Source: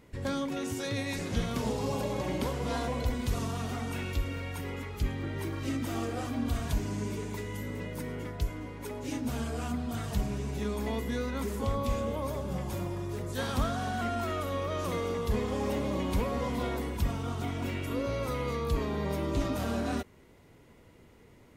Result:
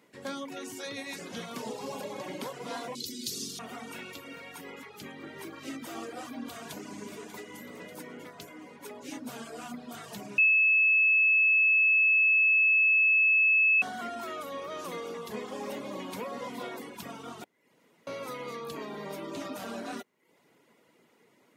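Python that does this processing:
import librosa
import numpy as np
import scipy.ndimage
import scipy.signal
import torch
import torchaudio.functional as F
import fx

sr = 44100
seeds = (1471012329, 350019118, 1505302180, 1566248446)

y = fx.curve_eq(x, sr, hz=(220.0, 370.0, 760.0, 2600.0, 4500.0, 8500.0), db=(0, 4, -30, -4, 15, 9), at=(2.95, 3.59))
y = fx.echo_throw(y, sr, start_s=6.0, length_s=0.99, ms=590, feedback_pct=75, wet_db=-11.5)
y = fx.edit(y, sr, fx.bleep(start_s=10.38, length_s=3.44, hz=2600.0, db=-16.5),
    fx.room_tone_fill(start_s=17.44, length_s=0.63), tone=tone)
y = fx.dereverb_blind(y, sr, rt60_s=0.57)
y = scipy.signal.sosfilt(scipy.signal.butter(4, 160.0, 'highpass', fs=sr, output='sos'), y)
y = fx.low_shelf(y, sr, hz=350.0, db=-7.5)
y = y * 10.0 ** (-1.0 / 20.0)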